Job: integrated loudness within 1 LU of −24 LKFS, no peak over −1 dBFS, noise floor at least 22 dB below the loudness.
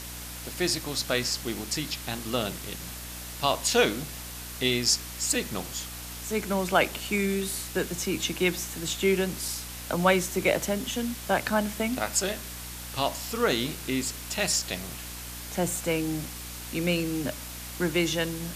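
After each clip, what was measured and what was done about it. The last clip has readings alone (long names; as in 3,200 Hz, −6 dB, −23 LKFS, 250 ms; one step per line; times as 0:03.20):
mains hum 60 Hz; hum harmonics up to 300 Hz; level of the hum −41 dBFS; background noise floor −39 dBFS; target noise floor −50 dBFS; integrated loudness −28.0 LKFS; sample peak −8.0 dBFS; target loudness −24.0 LKFS
→ mains-hum notches 60/120/180/240/300 Hz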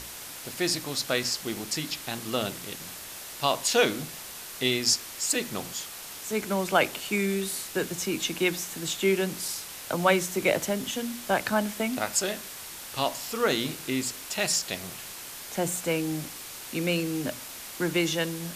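mains hum none found; background noise floor −41 dBFS; target noise floor −51 dBFS
→ broadband denoise 10 dB, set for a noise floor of −41 dBFS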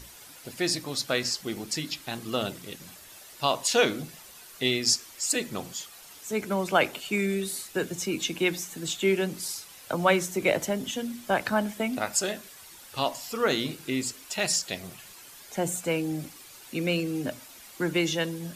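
background noise floor −49 dBFS; target noise floor −51 dBFS
→ broadband denoise 6 dB, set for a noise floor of −49 dBFS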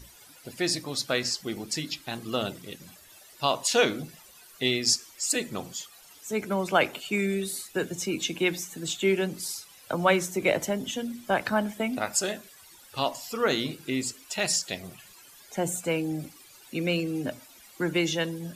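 background noise floor −53 dBFS; integrated loudness −28.5 LKFS; sample peak −8.5 dBFS; target loudness −24.0 LKFS
→ level +4.5 dB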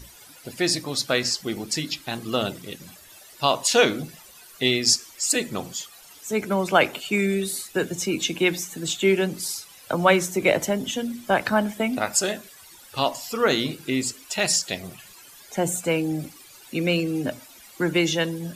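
integrated loudness −24.0 LKFS; sample peak −4.0 dBFS; background noise floor −48 dBFS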